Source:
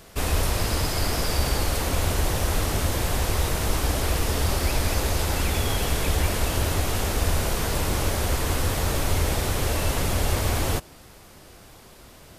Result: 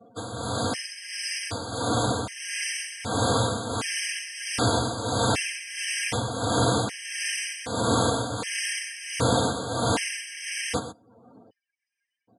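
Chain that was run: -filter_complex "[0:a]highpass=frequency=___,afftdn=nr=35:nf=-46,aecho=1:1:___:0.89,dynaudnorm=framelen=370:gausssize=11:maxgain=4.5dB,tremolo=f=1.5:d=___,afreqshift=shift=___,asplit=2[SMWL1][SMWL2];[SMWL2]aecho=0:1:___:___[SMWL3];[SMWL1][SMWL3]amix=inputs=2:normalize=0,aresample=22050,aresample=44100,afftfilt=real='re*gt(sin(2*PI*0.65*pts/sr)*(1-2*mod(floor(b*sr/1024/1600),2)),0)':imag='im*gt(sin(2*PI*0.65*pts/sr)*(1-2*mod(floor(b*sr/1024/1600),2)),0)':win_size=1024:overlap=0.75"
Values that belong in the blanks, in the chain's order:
88, 4.5, 0.7, 44, 124, 0.237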